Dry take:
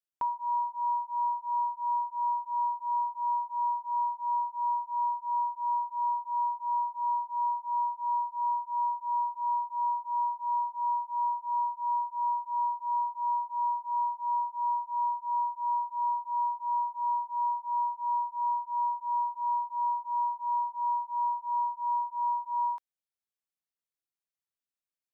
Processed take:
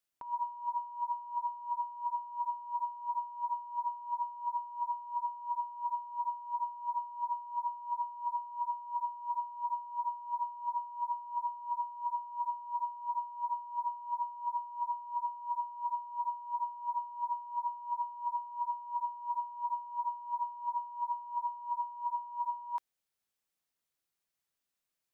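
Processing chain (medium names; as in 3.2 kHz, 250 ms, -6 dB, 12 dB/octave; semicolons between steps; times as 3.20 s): compressor with a negative ratio -36 dBFS, ratio -0.5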